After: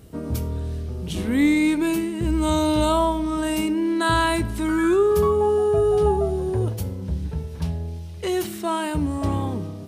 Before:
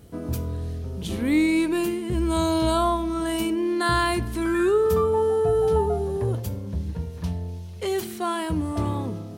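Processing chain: varispeed -5%; gain +2 dB

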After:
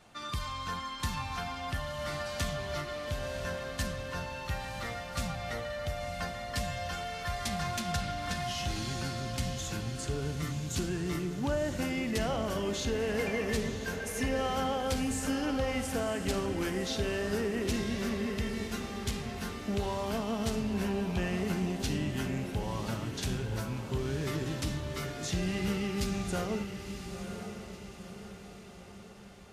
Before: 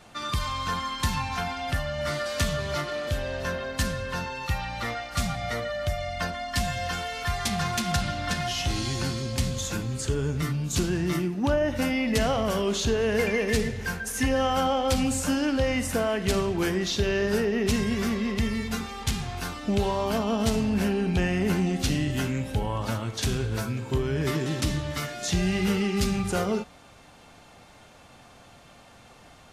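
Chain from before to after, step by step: diffused feedback echo 0.989 s, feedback 50%, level -8 dB; gain -7.5 dB

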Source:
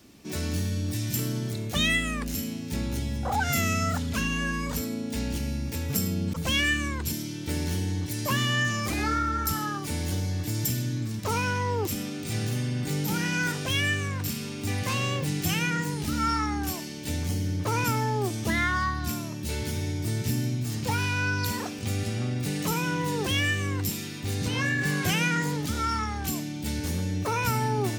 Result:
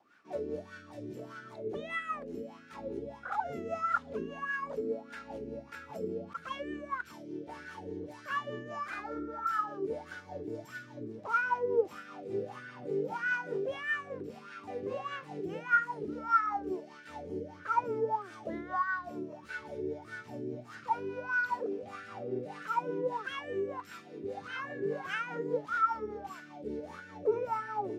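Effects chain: notches 50/100 Hz; in parallel at 0 dB: limiter -22.5 dBFS, peak gain reduction 9.5 dB; on the sum: wah 1.6 Hz 390–1500 Hz, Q 11; rotary speaker horn 5 Hz; gain +8 dB

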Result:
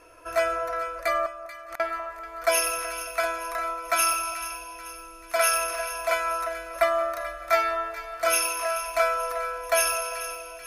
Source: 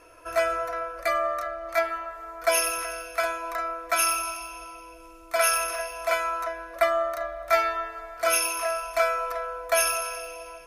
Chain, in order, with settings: 1.26–1.8 flipped gate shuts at -27 dBFS, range -38 dB; split-band echo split 1200 Hz, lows 0.198 s, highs 0.436 s, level -13 dB

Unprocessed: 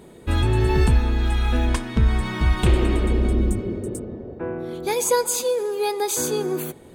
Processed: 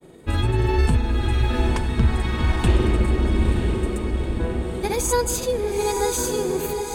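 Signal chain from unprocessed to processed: grains, spray 35 ms, pitch spread up and down by 0 st; diffused feedback echo 0.919 s, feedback 53%, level -5 dB

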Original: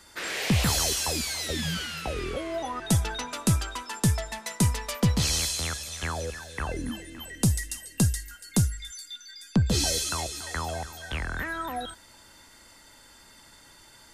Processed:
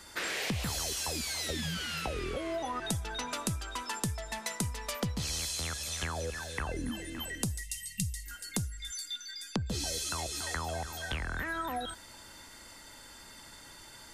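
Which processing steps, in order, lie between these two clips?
spectral delete 7.62–8.26, 210–1800 Hz; compressor 6:1, threshold -34 dBFS, peak gain reduction 15.5 dB; gain +2 dB

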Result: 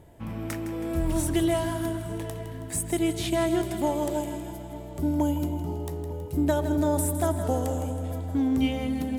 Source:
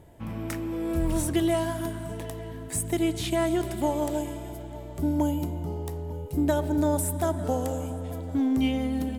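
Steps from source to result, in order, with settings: split-band echo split 460 Hz, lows 0.264 s, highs 0.161 s, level -11 dB

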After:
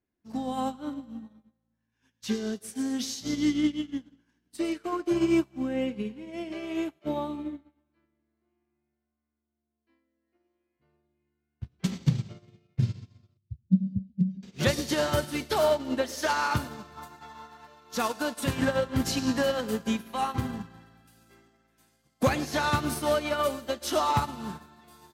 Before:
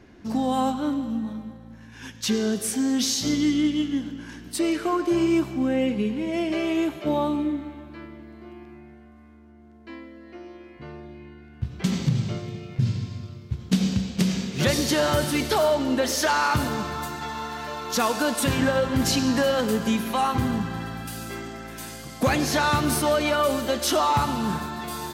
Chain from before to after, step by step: 13.37–14.43 spectral contrast raised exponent 2.3; 16.97–17.67 bell 910 Hz +4.5 dB 1.3 oct; thinning echo 0.111 s, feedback 51%, high-pass 980 Hz, level -17 dB; upward expander 2.5:1, over -41 dBFS; gain +1.5 dB

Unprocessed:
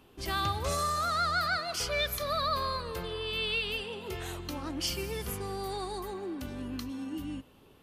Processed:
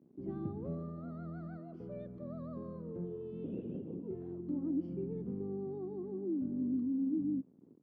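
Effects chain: 3.44–4.03 LPC vocoder at 8 kHz whisper; bit-crush 9-bit; Butterworth band-pass 230 Hz, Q 1.3; gain +5 dB

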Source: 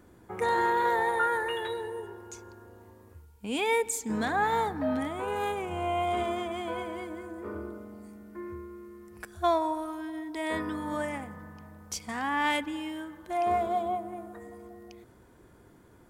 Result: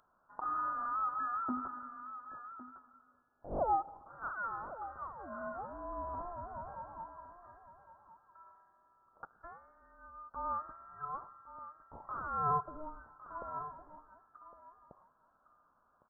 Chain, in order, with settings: steep high-pass 1800 Hz 72 dB/oct; outdoor echo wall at 190 m, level -7 dB; inverted band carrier 3100 Hz; gain +3 dB

